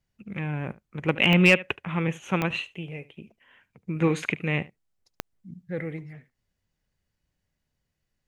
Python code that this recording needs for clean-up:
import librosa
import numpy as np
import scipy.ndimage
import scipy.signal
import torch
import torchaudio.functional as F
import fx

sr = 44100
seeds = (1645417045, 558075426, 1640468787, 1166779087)

y = fx.fix_declip(x, sr, threshold_db=-7.0)
y = fx.fix_declick_ar(y, sr, threshold=10.0)
y = fx.fix_echo_inverse(y, sr, delay_ms=73, level_db=-19.5)